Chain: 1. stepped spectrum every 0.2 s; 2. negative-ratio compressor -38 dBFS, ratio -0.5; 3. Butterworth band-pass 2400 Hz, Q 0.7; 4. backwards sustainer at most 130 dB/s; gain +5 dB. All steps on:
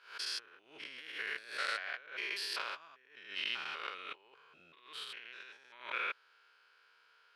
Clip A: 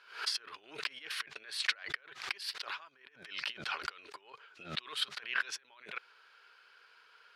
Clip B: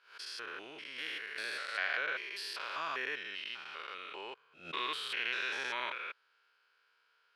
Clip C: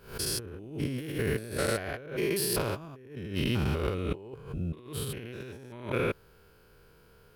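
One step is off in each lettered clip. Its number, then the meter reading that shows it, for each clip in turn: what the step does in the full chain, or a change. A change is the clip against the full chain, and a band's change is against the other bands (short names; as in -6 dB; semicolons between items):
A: 1, 500 Hz band -5.5 dB; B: 2, momentary loudness spread change -4 LU; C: 3, 250 Hz band +26.0 dB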